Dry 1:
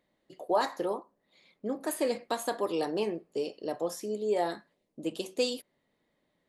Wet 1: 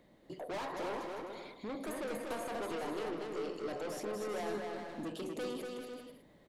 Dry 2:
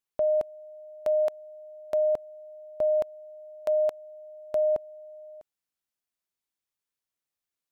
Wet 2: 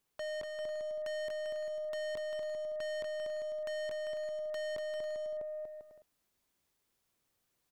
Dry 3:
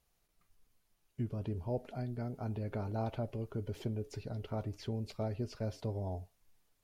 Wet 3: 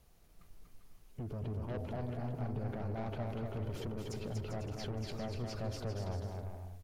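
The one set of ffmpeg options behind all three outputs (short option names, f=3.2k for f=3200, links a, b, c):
-filter_complex "[0:a]tiltshelf=f=750:g=4,acrossover=split=510|2900[a][b][c];[a]acompressor=threshold=-35dB:ratio=4[d];[b]acompressor=threshold=-25dB:ratio=4[e];[c]acompressor=threshold=-55dB:ratio=4[f];[d][e][f]amix=inputs=3:normalize=0,aeval=exprs='(tanh(89.1*val(0)+0.1)-tanh(0.1))/89.1':c=same,alimiter=level_in=23.5dB:limit=-24dB:level=0:latency=1:release=62,volume=-23.5dB,aecho=1:1:240|396|497.4|563.3|606.2:0.631|0.398|0.251|0.158|0.1,volume=10.5dB"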